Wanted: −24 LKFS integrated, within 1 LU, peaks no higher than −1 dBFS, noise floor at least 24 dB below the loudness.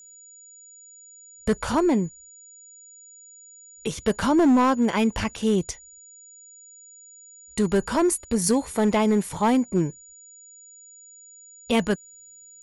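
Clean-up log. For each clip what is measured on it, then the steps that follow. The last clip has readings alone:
share of clipped samples 1.1%; peaks flattened at −14.0 dBFS; interfering tone 6,900 Hz; level of the tone −46 dBFS; integrated loudness −23.5 LKFS; sample peak −14.0 dBFS; target loudness −24.0 LKFS
→ clipped peaks rebuilt −14 dBFS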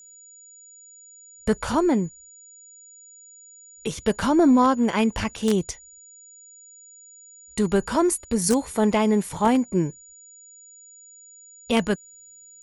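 share of clipped samples 0.0%; interfering tone 6,900 Hz; level of the tone −46 dBFS
→ notch filter 6,900 Hz, Q 30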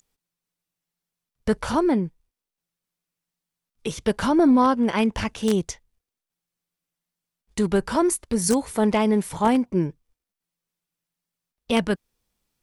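interfering tone none found; integrated loudness −22.5 LKFS; sample peak −5.0 dBFS; target loudness −24.0 LKFS
→ level −1.5 dB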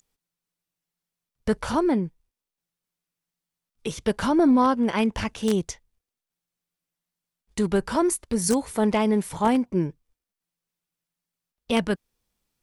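integrated loudness −24.0 LKFS; sample peak −6.5 dBFS; background noise floor −89 dBFS

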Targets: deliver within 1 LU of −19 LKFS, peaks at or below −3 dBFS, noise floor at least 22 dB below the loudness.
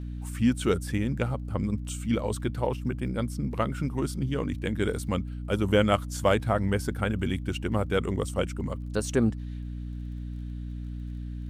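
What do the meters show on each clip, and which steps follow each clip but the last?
crackle rate 25 per second; mains hum 60 Hz; hum harmonics up to 300 Hz; level of the hum −33 dBFS; integrated loudness −29.0 LKFS; sample peak −9.5 dBFS; target loudness −19.0 LKFS
→ click removal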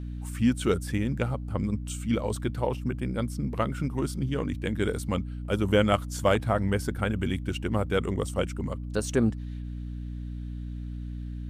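crackle rate 0 per second; mains hum 60 Hz; hum harmonics up to 300 Hz; level of the hum −33 dBFS
→ hum removal 60 Hz, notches 5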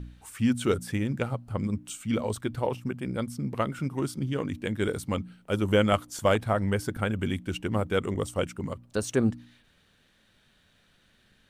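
mains hum none found; integrated loudness −29.0 LKFS; sample peak −10.0 dBFS; target loudness −19.0 LKFS
→ level +10 dB
brickwall limiter −3 dBFS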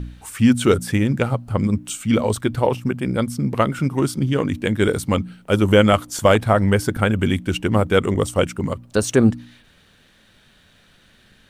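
integrated loudness −19.5 LKFS; sample peak −3.0 dBFS; background noise floor −55 dBFS

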